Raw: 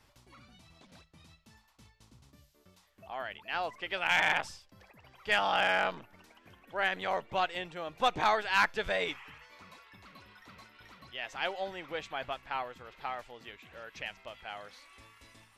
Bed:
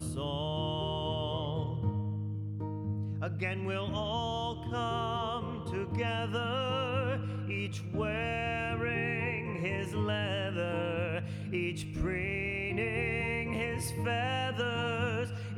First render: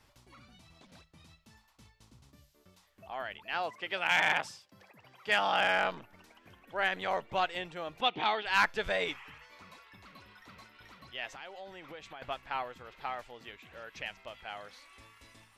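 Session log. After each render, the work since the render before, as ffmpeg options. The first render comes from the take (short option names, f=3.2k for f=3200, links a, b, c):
-filter_complex "[0:a]asettb=1/sr,asplit=3[a][b][c];[a]atrim=end=3.544[d];[b]atrim=start=3.54:end=5.65,asetpts=PTS-STARTPTS,afade=t=in:d=0.004:c=qsin,afade=t=out:st=2.106:d=0.004:c=qsin,highpass=f=110:w=0.5412,highpass=f=110:w=1.3066[e];[c]atrim=start=5.646[f];[d][e]acrossfade=d=0.004:c1=hsin:c2=qsin[g];[g][f]acrossfade=d=0.004:c1=qsin:c2=hsin,asplit=3[h][i][j];[h]afade=t=out:st=8:d=0.02[k];[i]highpass=190,equalizer=f=580:t=q:w=4:g=-9,equalizer=f=1.1k:t=q:w=4:g=-5,equalizer=f=1.6k:t=q:w=4:g=-8,equalizer=f=3.1k:t=q:w=4:g=9,lowpass=f=4.1k:w=0.5412,lowpass=f=4.1k:w=1.3066,afade=t=in:st=8:d=0.02,afade=t=out:st=8.45:d=0.02[l];[j]afade=t=in:st=8.45:d=0.02[m];[k][l][m]amix=inputs=3:normalize=0,asettb=1/sr,asplit=3[n][o][p];[n]atrim=end=11.294[q];[o]atrim=start=11.29:end=12.22,asetpts=PTS-STARTPTS,afade=t=in:d=0.004:c=qsin,afade=t=out:st=0.926:d=0.004:c=qsin,acompressor=threshold=-44dB:ratio=4:attack=3.2:release=140:knee=1:detection=peak[r];[p]atrim=start=12.216[s];[q][r]acrossfade=d=0.004:c1=hsin:c2=qsin[t];[t][s]acrossfade=d=0.004:c1=qsin:c2=hsin"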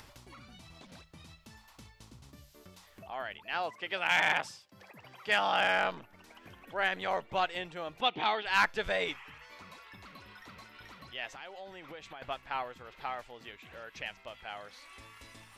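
-af "acompressor=mode=upward:threshold=-45dB:ratio=2.5"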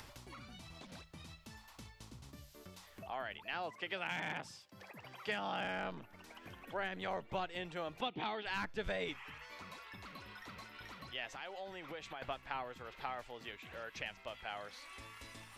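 -filter_complex "[0:a]acrossover=split=350[a][b];[b]acompressor=threshold=-38dB:ratio=6[c];[a][c]amix=inputs=2:normalize=0"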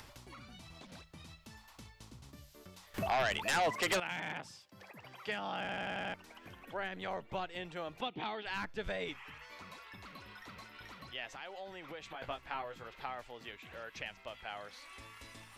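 -filter_complex "[0:a]asettb=1/sr,asplit=3[a][b][c];[a]atrim=end=2.944[d];[b]atrim=start=2.94:end=4,asetpts=PTS-STARTPTS,afade=t=in:d=0.004:c=qsin,afade=t=out:st=1.056:d=0.004:c=qsin,aeval=exprs='0.0501*sin(PI/2*3.55*val(0)/0.0501)':c=same[e];[c]atrim=start=3.996[f];[d][e]acrossfade=d=0.004:c1=hsin:c2=qsin[g];[g][f]acrossfade=d=0.004:c1=qsin:c2=hsin,asettb=1/sr,asplit=3[h][i][j];[h]atrim=end=12.124[k];[i]atrim=start=12.12:end=12.88,asetpts=PTS-STARTPTS,afade=t=in:d=0.004:c=qsin,afade=t=out:st=0.756:d=0.004:c=qsin,asplit=2[l][m];[m]adelay=18,volume=-5.5dB[n];[l][n]amix=inputs=2:normalize=0,atrim=end_sample=33516[o];[j]atrim=start=12.876[p];[k][o]acrossfade=d=0.004:c1=hsin:c2=qsin[q];[q][p]acrossfade=d=0.004:c1=qsin:c2=hsin,asplit=7[r][s][t][u][v][w][x];[r]atrim=end=5.692[y];[s]atrim=start=5.598:end=5.692[z];[t]atrim=start=5.598:end=5.692[aa];[u]atrim=start=5.598:end=5.692[ab];[v]atrim=start=5.598:end=5.692[ac];[w]atrim=start=5.598:end=5.692[ad];[x]atrim=start=6.138[ae];[y][z]acrossfade=d=0.004:c1=hsin:c2=hsin[af];[af][aa]acrossfade=d=0.004:c1=hsin:c2=hsin[ag];[ag][ab]acrossfade=d=0.004:c1=hsin:c2=hsin[ah];[ah][ac]acrossfade=d=0.004:c1=hsin:c2=hsin[ai];[ai][ad]acrossfade=d=0.004:c1=hsin:c2=hsin[aj];[aj][ae]acrossfade=d=0.004:c1=hsin:c2=hsin"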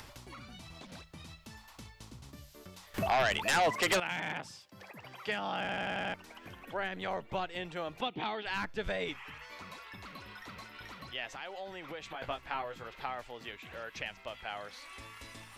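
-af "volume=3.5dB"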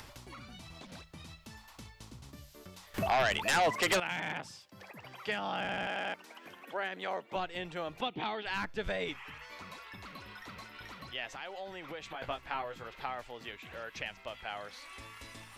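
-filter_complex "[0:a]asettb=1/sr,asplit=3[a][b][c];[a]atrim=end=5.874[d];[b]atrim=start=5.87:end=7.36,asetpts=PTS-STARTPTS,afade=t=in:d=0.004:c=qsin,afade=t=out:st=1.486:d=0.004:c=qsin,highpass=270[e];[c]atrim=start=7.356[f];[d][e]acrossfade=d=0.004:c1=hsin:c2=qsin[g];[g][f]acrossfade=d=0.004:c1=qsin:c2=hsin"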